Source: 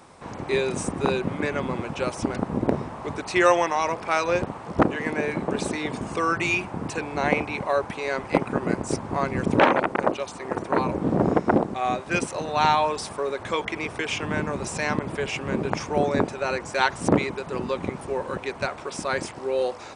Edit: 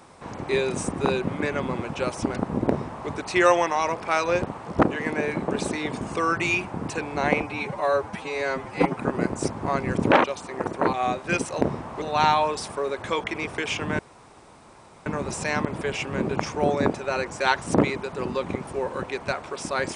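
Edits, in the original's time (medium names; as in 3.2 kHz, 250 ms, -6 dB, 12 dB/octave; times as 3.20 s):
2.68–3.09 s: copy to 12.43 s
7.42–8.46 s: stretch 1.5×
9.72–10.15 s: delete
10.84–11.75 s: delete
14.40 s: insert room tone 1.07 s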